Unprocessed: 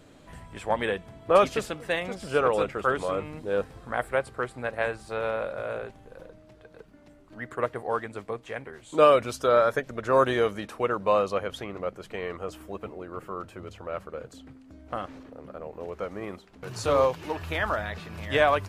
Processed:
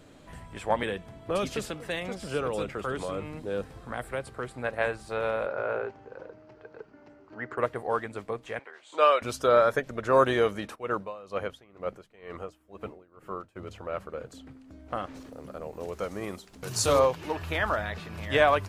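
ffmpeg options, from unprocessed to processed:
ffmpeg -i in.wav -filter_complex "[0:a]asettb=1/sr,asplit=3[link_01][link_02][link_03];[link_01]atrim=end=0.834[link_04];[link_02]atrim=start=0.83:end=4.48,asetpts=PTS-STARTPTS,afade=type=in:duration=0.004:curve=qsin,afade=type=out:start_time=3.646:duration=0.004:curve=qsin,acrossover=split=330|3000[link_05][link_06][link_07];[link_06]acompressor=threshold=-33dB:ratio=3:attack=3.2:release=140:knee=2.83:detection=peak[link_08];[link_05][link_08][link_07]amix=inputs=3:normalize=0[link_09];[link_03]atrim=start=4.476[link_10];[link_04][link_09]acrossfade=duration=0.004:curve1=hsin:curve2=qsin[link_11];[link_11][link_10]acrossfade=duration=0.004:curve1=qsin:curve2=hsin,asettb=1/sr,asplit=3[link_12][link_13][link_14];[link_12]atrim=end=5.464[link_15];[link_13]atrim=start=5.46:end=7.58,asetpts=PTS-STARTPTS,afade=type=in:duration=0.004:curve=qsin,afade=type=out:start_time=2.116:duration=0.004:curve=qsin,highpass=100,equalizer=frequency=180:width_type=q:width=4:gain=-7,equalizer=frequency=410:width_type=q:width=4:gain=7,equalizer=frequency=870:width_type=q:width=4:gain=6,equalizer=frequency=1400:width_type=q:width=4:gain=5,equalizer=frequency=3600:width_type=q:width=4:gain=-9,lowpass=frequency=5600:width=0.5412,lowpass=frequency=5600:width=1.3066[link_16];[link_14]atrim=start=7.576[link_17];[link_15][link_16]acrossfade=duration=0.004:curve1=hsin:curve2=qsin[link_18];[link_18][link_17]acrossfade=duration=0.004:curve1=qsin:curve2=hsin,asettb=1/sr,asplit=3[link_19][link_20][link_21];[link_19]atrim=end=8.594[link_22];[link_20]atrim=start=8.59:end=9.22,asetpts=PTS-STARTPTS,afade=type=in:duration=0.004:curve=qsin,afade=type=out:start_time=0.626:duration=0.004:curve=qsin,highpass=690,lowpass=5500[link_23];[link_21]atrim=start=9.216[link_24];[link_22][link_23]acrossfade=duration=0.004:curve1=hsin:curve2=qsin[link_25];[link_25][link_24]acrossfade=duration=0.004:curve1=qsin:curve2=hsin,asplit=3[link_26][link_27][link_28];[link_26]afade=type=out:start_time=10.74:duration=0.02[link_29];[link_27]aeval=exprs='val(0)*pow(10,-22*(0.5-0.5*cos(2*PI*2.1*n/s))/20)':channel_layout=same,afade=type=in:start_time=10.74:duration=0.02,afade=type=out:start_time=13.55:duration=0.02[link_30];[link_28]afade=type=in:start_time=13.55:duration=0.02[link_31];[link_29][link_30][link_31]amix=inputs=3:normalize=0,asplit=3[link_32][link_33][link_34];[link_32]afade=type=out:start_time=15.14:duration=0.02[link_35];[link_33]bass=frequency=250:gain=2,treble=frequency=4000:gain=13,afade=type=in:start_time=15.14:duration=0.02,afade=type=out:start_time=16.98:duration=0.02[link_36];[link_34]afade=type=in:start_time=16.98:duration=0.02[link_37];[link_35][link_36][link_37]amix=inputs=3:normalize=0" out.wav

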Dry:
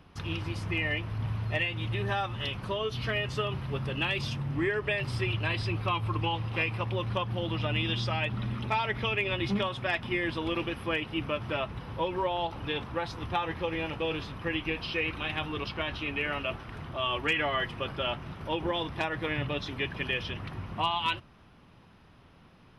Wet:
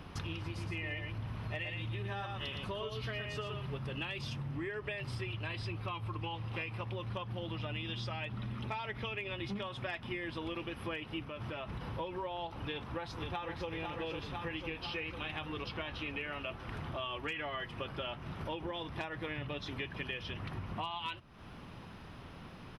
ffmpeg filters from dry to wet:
ffmpeg -i in.wav -filter_complex "[0:a]asettb=1/sr,asplit=3[link_01][link_02][link_03];[link_01]atrim=end=0.464[link_04];[link_02]atrim=start=0.46:end=3.78,asetpts=PTS-STARTPTS,afade=type=in:duration=0.004:curve=qsin,afade=type=out:start_time=3.316:duration=0.004:curve=qsin,aecho=1:1:115:0.531,atrim=end_sample=146412[link_05];[link_03]atrim=start=3.776[link_06];[link_04][link_05]acrossfade=duration=0.004:curve1=hsin:curve2=qsin[link_07];[link_07][link_06]acrossfade=duration=0.004:curve1=qsin:curve2=hsin,asettb=1/sr,asplit=3[link_08][link_09][link_10];[link_08]atrim=end=11.234[link_11];[link_09]atrim=start=11.23:end=11.93,asetpts=PTS-STARTPTS,afade=type=in:duration=0.004:curve=qsin,afade=type=out:start_time=0.696:duration=0.004:curve=qsin,acompressor=threshold=-36dB:ratio=6:attack=3.2:release=140:knee=1:detection=peak[link_12];[link_10]atrim=start=11.926[link_13];[link_11][link_12]acrossfade=duration=0.004:curve1=hsin:curve2=qsin[link_14];[link_14][link_13]acrossfade=duration=0.004:curve1=qsin:curve2=hsin,asplit=2[link_15][link_16];[link_16]afade=type=in:start_time=12.72:duration=0.01,afade=type=out:start_time=13.69:duration=0.01,aecho=0:1:500|1000|1500|2000|2500|3000|3500|4000|4500|5000:0.530884|0.345075|0.224299|0.145794|0.0947662|0.061598|0.0400387|0.0260252|0.0169164|0.0109956[link_17];[link_15][link_17]amix=inputs=2:normalize=0,acompressor=threshold=-46dB:ratio=5,volume=7dB" out.wav

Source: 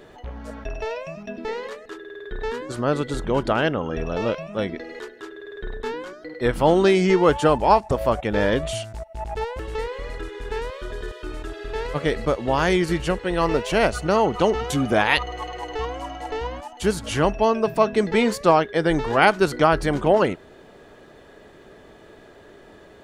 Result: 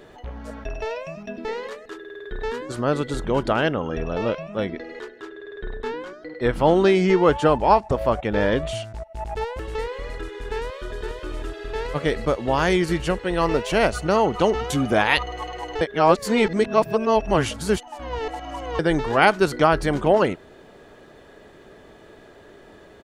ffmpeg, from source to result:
ffmpeg -i in.wav -filter_complex "[0:a]asettb=1/sr,asplit=3[link_01][link_02][link_03];[link_01]atrim=end=3.984[link_04];[link_02]atrim=start=3.98:end=9.14,asetpts=PTS-STARTPTS,afade=type=in:duration=0.004:curve=qsin,afade=type=out:start_time=5.156:duration=0.004:curve=qsin,highshelf=frequency=7000:gain=-10[link_05];[link_03]atrim=start=9.136[link_06];[link_04][link_05]acrossfade=duration=0.004:curve1=hsin:curve2=qsin[link_07];[link_07][link_06]acrossfade=duration=0.004:curve1=qsin:curve2=hsin,asplit=2[link_08][link_09];[link_09]afade=type=in:start_time=10.54:duration=0.01,afade=type=out:start_time=11.01:duration=0.01,aecho=0:1:490|980:0.473151|0.0473151[link_10];[link_08][link_10]amix=inputs=2:normalize=0,asplit=3[link_11][link_12][link_13];[link_11]atrim=end=15.812[link_14];[link_12]atrim=start=15.808:end=18.792,asetpts=PTS-STARTPTS,areverse[link_15];[link_13]atrim=start=18.788[link_16];[link_14][link_15]acrossfade=duration=0.004:curve1=hsin:curve2=hsin[link_17];[link_17][link_16]acrossfade=duration=0.004:curve1=hsin:curve2=hsin" out.wav

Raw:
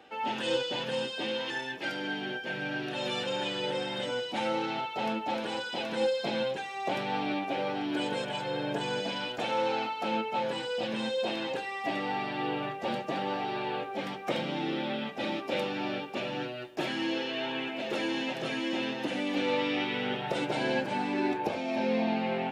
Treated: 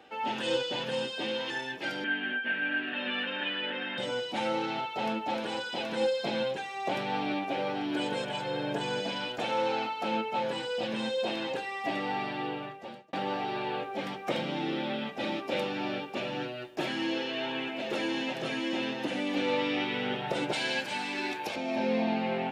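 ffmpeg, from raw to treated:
ffmpeg -i in.wav -filter_complex "[0:a]asettb=1/sr,asplit=3[link_01][link_02][link_03];[link_01]atrim=end=2.044[link_04];[link_02]atrim=start=2.04:end=3.98,asetpts=PTS-STARTPTS,afade=type=in:duration=0.004:curve=qsin,afade=type=out:start_time=1.936:duration=0.004:curve=qsin,highpass=frequency=240:width=0.5412,highpass=frequency=240:width=1.3066,equalizer=frequency=240:width_type=q:width=4:gain=9,equalizer=frequency=360:width_type=q:width=4:gain=-9,equalizer=frequency=520:width_type=q:width=4:gain=-7,equalizer=frequency=820:width_type=q:width=4:gain=-7,equalizer=frequency=1700:width_type=q:width=4:gain=10,equalizer=frequency=2800:width_type=q:width=4:gain=6,lowpass=frequency=3100:width=0.5412,lowpass=frequency=3100:width=1.3066[link_05];[link_03]atrim=start=3.976[link_06];[link_04][link_05]acrossfade=duration=0.004:curve1=hsin:curve2=qsin[link_07];[link_07][link_06]acrossfade=duration=0.004:curve1=qsin:curve2=hsin,asettb=1/sr,asplit=3[link_08][link_09][link_10];[link_08]atrim=end=20.534[link_11];[link_09]atrim=start=20.53:end=21.56,asetpts=PTS-STARTPTS,afade=type=in:duration=0.004:curve=qsin,afade=type=out:start_time=1.026:duration=0.004:curve=qsin,tiltshelf=frequency=1400:gain=-9[link_12];[link_10]atrim=start=21.556[link_13];[link_11][link_12]acrossfade=duration=0.004:curve1=hsin:curve2=qsin[link_14];[link_14][link_13]acrossfade=duration=0.004:curve1=qsin:curve2=hsin,asplit=2[link_15][link_16];[link_15]atrim=end=13.13,asetpts=PTS-STARTPTS,afade=type=out:start_time=12.26:duration=0.87[link_17];[link_16]atrim=start=13.13,asetpts=PTS-STARTPTS,afade=type=in:duration=0.004:curve=hsin[link_18];[link_17][link_18]concat=n=2:v=0:a=1" out.wav

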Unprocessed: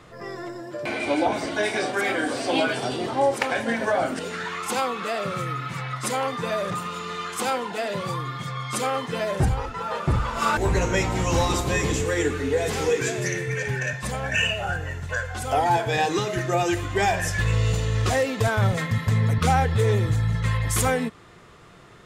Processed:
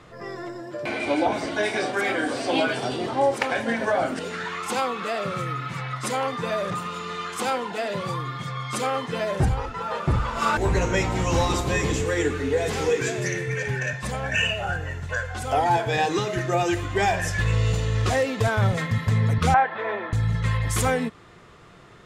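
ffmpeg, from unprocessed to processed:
ffmpeg -i in.wav -filter_complex "[0:a]asettb=1/sr,asplit=3[link_01][link_02][link_03];[link_01]atrim=end=19.544[link_04];[link_02]atrim=start=19.54:end=20.13,asetpts=PTS-STARTPTS,afade=type=in:duration=0.004:curve=qsin,afade=type=out:start_time=0.586:duration=0.004:curve=qsin,highpass=frequency=290:width=0.5412,highpass=frequency=290:width=1.3066,equalizer=frequency=290:width_type=q:width=4:gain=-5,equalizer=frequency=450:width_type=q:width=4:gain=-10,equalizer=frequency=670:width_type=q:width=4:gain=10,equalizer=frequency=1000:width_type=q:width=4:gain=7,equalizer=frequency=1600:width_type=q:width=4:gain=6,equalizer=frequency=2900:width_type=q:width=4:gain=-3,lowpass=frequency=3000:width=0.5412,lowpass=frequency=3000:width=1.3066[link_05];[link_03]atrim=start=20.126[link_06];[link_04][link_05]acrossfade=duration=0.004:curve1=hsin:curve2=qsin[link_07];[link_07][link_06]acrossfade=duration=0.004:curve1=qsin:curve2=hsin,highshelf=frequency=9700:gain=-7.5" out.wav

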